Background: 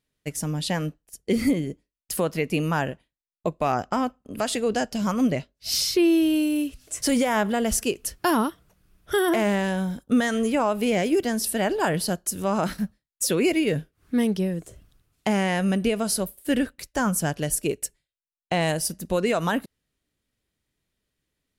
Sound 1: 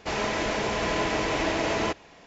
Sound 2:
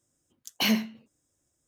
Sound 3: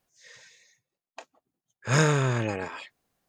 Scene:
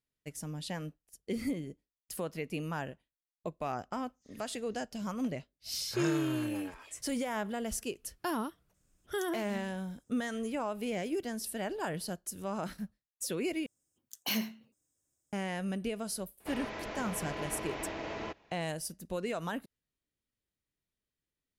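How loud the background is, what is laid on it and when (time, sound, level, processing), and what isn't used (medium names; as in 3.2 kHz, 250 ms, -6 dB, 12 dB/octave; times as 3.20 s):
background -12.5 dB
4.06 s: add 3 -14 dB
8.74 s: add 2 -11.5 dB + compressor with a negative ratio -35 dBFS
13.66 s: replace with 2 -9.5 dB + treble shelf 8.3 kHz +11 dB
16.40 s: add 1 -12.5 dB + distance through air 110 m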